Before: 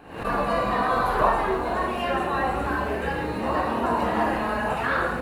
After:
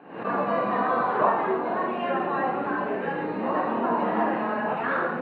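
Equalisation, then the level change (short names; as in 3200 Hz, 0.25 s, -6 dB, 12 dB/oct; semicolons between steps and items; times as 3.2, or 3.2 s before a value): HPF 170 Hz 24 dB/oct; air absorption 480 m; +1.0 dB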